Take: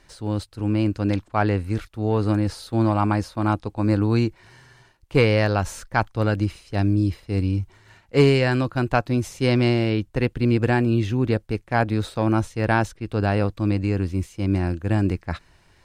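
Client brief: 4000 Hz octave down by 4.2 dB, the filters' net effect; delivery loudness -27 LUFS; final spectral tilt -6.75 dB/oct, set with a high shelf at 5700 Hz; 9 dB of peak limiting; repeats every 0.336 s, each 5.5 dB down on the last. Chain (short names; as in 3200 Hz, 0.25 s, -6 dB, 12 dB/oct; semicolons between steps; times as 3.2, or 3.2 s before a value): bell 4000 Hz -3 dB; high shelf 5700 Hz -8 dB; limiter -15 dBFS; feedback echo 0.336 s, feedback 53%, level -5.5 dB; gain -1.5 dB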